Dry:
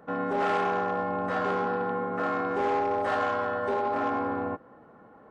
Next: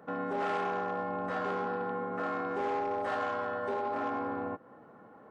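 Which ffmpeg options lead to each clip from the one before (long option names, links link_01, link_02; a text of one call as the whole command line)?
ffmpeg -i in.wav -filter_complex "[0:a]highpass=92,asplit=2[link_01][link_02];[link_02]acompressor=threshold=-37dB:ratio=6,volume=1.5dB[link_03];[link_01][link_03]amix=inputs=2:normalize=0,volume=-8dB" out.wav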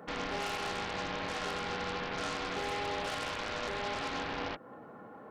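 ffmpeg -i in.wav -af "alimiter=level_in=3.5dB:limit=-24dB:level=0:latency=1:release=229,volume=-3.5dB,aeval=exprs='0.0422*(cos(1*acos(clip(val(0)/0.0422,-1,1)))-cos(1*PI/2))+0.0075*(cos(3*acos(clip(val(0)/0.0422,-1,1)))-cos(3*PI/2))+0.0133*(cos(7*acos(clip(val(0)/0.0422,-1,1)))-cos(7*PI/2))':channel_layout=same" out.wav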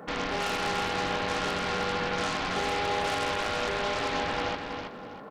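ffmpeg -i in.wav -af "aecho=1:1:325|650|975:0.501|0.135|0.0365,volume=5.5dB" out.wav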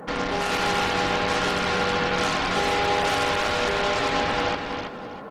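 ffmpeg -i in.wav -af "volume=6dB" -ar 48000 -c:a libopus -b:a 20k out.opus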